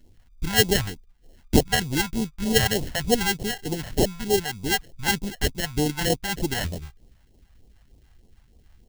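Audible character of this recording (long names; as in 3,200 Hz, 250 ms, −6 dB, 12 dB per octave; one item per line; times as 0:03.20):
aliases and images of a low sample rate 1,200 Hz, jitter 0%
phaser sweep stages 2, 3.3 Hz, lowest notch 350–1,500 Hz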